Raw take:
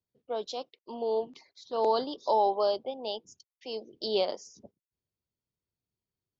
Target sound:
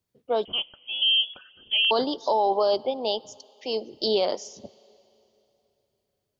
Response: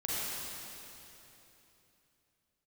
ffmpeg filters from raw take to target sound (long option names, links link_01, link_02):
-filter_complex "[0:a]alimiter=limit=-22.5dB:level=0:latency=1:release=19,asplit=2[link_01][link_02];[1:a]atrim=start_sample=2205,lowshelf=frequency=200:gain=-11[link_03];[link_02][link_03]afir=irnorm=-1:irlink=0,volume=-28dB[link_04];[link_01][link_04]amix=inputs=2:normalize=0,asettb=1/sr,asplit=3[link_05][link_06][link_07];[link_05]atrim=end=0.454[link_08];[link_06]atrim=start=0.45:end=1.91,asetpts=PTS-STARTPTS,afade=type=in:duration=0.004:curve=qsin,afade=type=out:start_time=1.456:duration=0.004:curve=qsin,lowpass=frequency=3100:width_type=q:width=0.5098,lowpass=frequency=3100:width_type=q:width=0.6013,lowpass=frequency=3100:width_type=q:width=0.9,lowpass=frequency=3100:width_type=q:width=2.563,afreqshift=-3600[link_09];[link_07]atrim=start=1.906[link_10];[link_08][link_09]acrossfade=duration=0.004:curve1=hsin:curve2=qsin[link_11];[link_11][link_10]acrossfade=duration=0.004:curve1=qsin:curve2=hsin,volume=8.5dB"